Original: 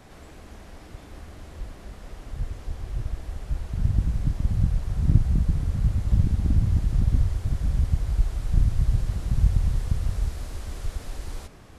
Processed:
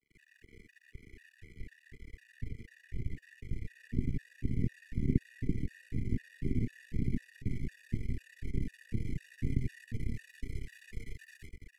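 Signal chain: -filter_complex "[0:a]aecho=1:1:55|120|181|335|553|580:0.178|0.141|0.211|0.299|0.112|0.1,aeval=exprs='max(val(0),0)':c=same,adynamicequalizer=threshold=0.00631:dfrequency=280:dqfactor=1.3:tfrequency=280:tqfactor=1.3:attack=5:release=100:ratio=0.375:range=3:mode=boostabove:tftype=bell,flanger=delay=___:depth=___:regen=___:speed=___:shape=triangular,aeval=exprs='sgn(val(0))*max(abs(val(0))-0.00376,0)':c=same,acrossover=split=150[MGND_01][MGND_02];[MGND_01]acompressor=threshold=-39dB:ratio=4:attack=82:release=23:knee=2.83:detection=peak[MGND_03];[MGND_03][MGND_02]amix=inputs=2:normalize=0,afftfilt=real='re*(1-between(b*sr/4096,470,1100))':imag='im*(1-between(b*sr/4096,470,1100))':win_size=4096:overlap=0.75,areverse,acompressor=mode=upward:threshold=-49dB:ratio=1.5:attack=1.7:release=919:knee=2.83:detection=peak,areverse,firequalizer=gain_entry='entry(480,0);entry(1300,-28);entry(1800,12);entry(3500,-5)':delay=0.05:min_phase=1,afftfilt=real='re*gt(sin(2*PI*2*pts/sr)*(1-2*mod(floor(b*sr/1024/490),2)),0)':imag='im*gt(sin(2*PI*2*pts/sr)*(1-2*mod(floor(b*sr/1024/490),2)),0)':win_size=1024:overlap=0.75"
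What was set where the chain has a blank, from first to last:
7.4, 1.5, 71, 0.95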